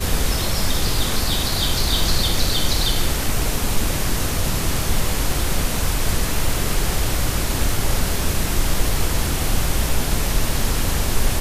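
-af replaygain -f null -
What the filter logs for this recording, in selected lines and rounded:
track_gain = +3.9 dB
track_peak = 0.404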